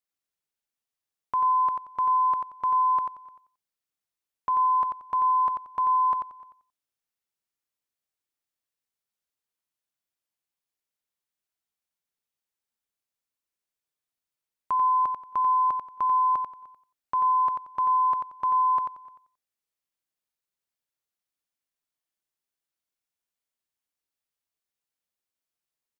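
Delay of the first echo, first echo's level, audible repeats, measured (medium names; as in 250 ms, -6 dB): 90 ms, -5.5 dB, 3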